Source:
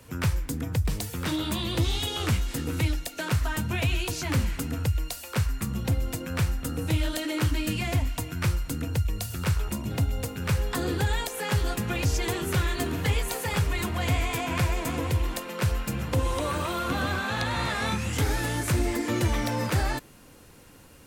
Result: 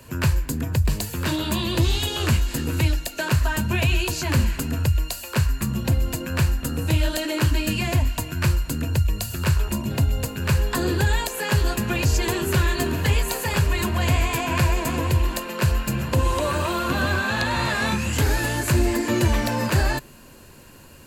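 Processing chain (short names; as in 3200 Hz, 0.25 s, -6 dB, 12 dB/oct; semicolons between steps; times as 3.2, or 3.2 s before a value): ripple EQ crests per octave 1.4, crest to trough 6 dB; gain +4.5 dB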